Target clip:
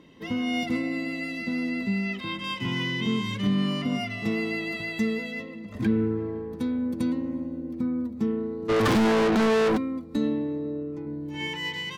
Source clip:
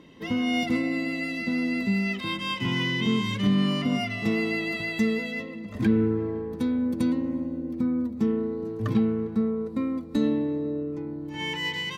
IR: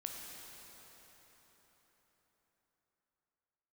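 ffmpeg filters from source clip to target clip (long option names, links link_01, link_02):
-filter_complex "[0:a]asettb=1/sr,asplit=3[link_01][link_02][link_03];[link_01]atrim=end=1.694[link_04];[link_02]atrim=start=1.69:end=2.44,asetpts=PTS-STARTPTS,afade=type=in:duration=0.004:curve=qsin,afade=type=out:start_time=0.746:duration=0.004:curve=qsin,acrossover=split=4800[link_05][link_06];[link_06]acompressor=threshold=-54dB:ratio=4:attack=1:release=60[link_07];[link_05][link_07]amix=inputs=2:normalize=0[link_08];[link_03]atrim=start=2.436[link_09];[link_04][link_08]acrossfade=duration=0.004:curve1=hsin:curve2=qsin[link_10];[link_10][link_09]acrossfade=duration=0.004:curve1=qsin:curve2=hsin,asplit=3[link_11][link_12][link_13];[link_11]afade=type=out:start_time=8.68:duration=0.02[link_14];[link_12]asplit=2[link_15][link_16];[link_16]highpass=frequency=720:poles=1,volume=43dB,asoftclip=type=tanh:threshold=-13dB[link_17];[link_15][link_17]amix=inputs=2:normalize=0,lowpass=frequency=4700:poles=1,volume=-6dB,afade=type=in:start_time=8.68:duration=0.02,afade=type=out:start_time=9.76:duration=0.02[link_18];[link_13]afade=type=in:start_time=9.76:duration=0.02[link_19];[link_14][link_18][link_19]amix=inputs=3:normalize=0,asettb=1/sr,asplit=3[link_20][link_21][link_22];[link_20]atrim=end=11.054[link_23];[link_21]atrim=start=11.05:end=11.47,asetpts=PTS-STARTPTS,afade=type=in:duration=0.004:curve=qsin,afade=type=out:start_time=0.416:duration=0.004:curve=qsin,asplit=2[link_24][link_25];[link_25]adelay=14,volume=-4dB[link_26];[link_24][link_26]amix=inputs=2:normalize=0,atrim=end_sample=18522[link_27];[link_22]atrim=start=11.466[link_28];[link_23][link_27]acrossfade=duration=0.004:curve1=hsin:curve2=qsin[link_29];[link_29][link_28]acrossfade=duration=0.004:curve1=qsin:curve2=hsin,volume=-2dB"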